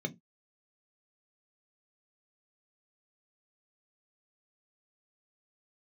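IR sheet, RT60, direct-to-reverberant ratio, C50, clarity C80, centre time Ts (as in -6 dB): no single decay rate, 6.5 dB, 23.0 dB, 32.0 dB, 8 ms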